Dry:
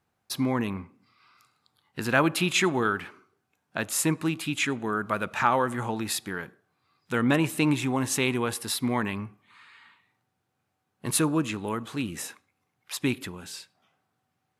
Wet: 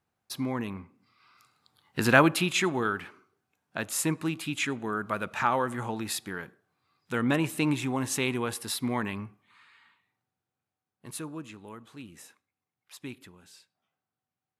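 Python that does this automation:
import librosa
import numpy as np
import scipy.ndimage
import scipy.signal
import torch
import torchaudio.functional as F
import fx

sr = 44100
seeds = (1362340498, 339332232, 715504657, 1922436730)

y = fx.gain(x, sr, db=fx.line((0.8, -5.0), (2.08, 5.0), (2.51, -3.0), (9.22, -3.0), (11.18, -14.0)))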